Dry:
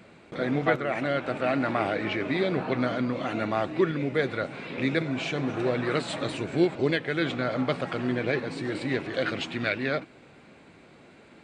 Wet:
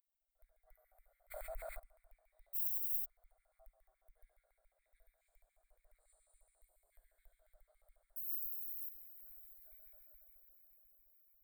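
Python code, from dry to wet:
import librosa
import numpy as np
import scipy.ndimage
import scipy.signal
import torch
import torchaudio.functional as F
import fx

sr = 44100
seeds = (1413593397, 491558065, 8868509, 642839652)

p1 = fx.rev_schroeder(x, sr, rt60_s=2.8, comb_ms=31, drr_db=-3.0)
p2 = fx.resample_bad(p1, sr, factor=3, down='filtered', up='hold', at=(8.16, 8.89))
p3 = p2 + fx.echo_diffused(p2, sr, ms=569, feedback_pct=61, wet_db=-13, dry=0)
p4 = fx.filter_lfo_highpass(p3, sr, shape='square', hz=7.1, low_hz=650.0, high_hz=2200.0, q=7.0)
p5 = fx.low_shelf(p4, sr, hz=460.0, db=-10.5)
p6 = fx.mod_noise(p5, sr, seeds[0], snr_db=17, at=(2.53, 3.04), fade=0.02)
p7 = scipy.signal.sosfilt(scipy.signal.cheby2(4, 60, [120.0, 6300.0], 'bandstop', fs=sr, output='sos'), p6)
p8 = fx.peak_eq(p7, sr, hz=2000.0, db=-3.0, octaves=0.77)
p9 = fx.env_flatten(p8, sr, amount_pct=70, at=(1.3, 1.78), fade=0.02)
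y = F.gain(torch.from_numpy(p9), 4.5).numpy()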